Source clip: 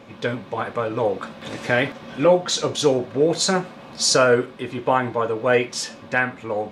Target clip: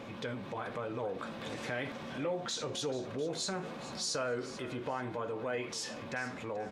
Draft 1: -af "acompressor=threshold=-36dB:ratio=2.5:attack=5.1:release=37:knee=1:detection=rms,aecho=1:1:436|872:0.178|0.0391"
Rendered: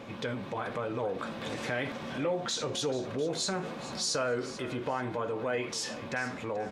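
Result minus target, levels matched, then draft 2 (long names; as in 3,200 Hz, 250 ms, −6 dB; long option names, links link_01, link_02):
downward compressor: peak gain reduction −4 dB
-af "acompressor=threshold=-43dB:ratio=2.5:attack=5.1:release=37:knee=1:detection=rms,aecho=1:1:436|872:0.178|0.0391"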